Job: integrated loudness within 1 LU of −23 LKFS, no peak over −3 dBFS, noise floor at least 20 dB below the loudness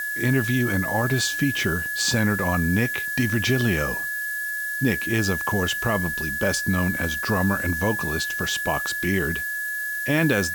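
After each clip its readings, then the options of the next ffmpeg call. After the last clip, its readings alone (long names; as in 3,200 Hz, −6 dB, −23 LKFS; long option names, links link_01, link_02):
interfering tone 1,700 Hz; level of the tone −26 dBFS; background noise floor −29 dBFS; target noise floor −43 dBFS; integrated loudness −23.0 LKFS; sample peak −9.5 dBFS; target loudness −23.0 LKFS
→ -af "bandreject=frequency=1700:width=30"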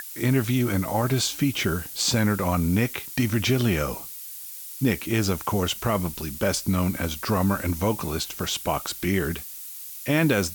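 interfering tone none found; background noise floor −39 dBFS; target noise floor −45 dBFS
→ -af "afftdn=noise_reduction=6:noise_floor=-39"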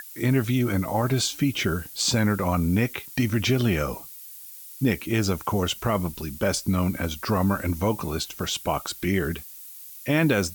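background noise floor −43 dBFS; target noise floor −45 dBFS
→ -af "afftdn=noise_reduction=6:noise_floor=-43"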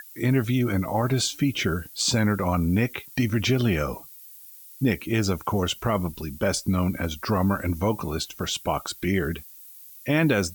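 background noise floor −46 dBFS; integrated loudness −25.0 LKFS; sample peak −11.5 dBFS; target loudness −23.0 LKFS
→ -af "volume=2dB"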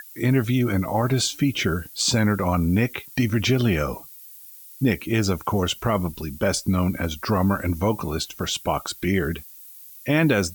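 integrated loudness −23.0 LKFS; sample peak −9.5 dBFS; background noise floor −44 dBFS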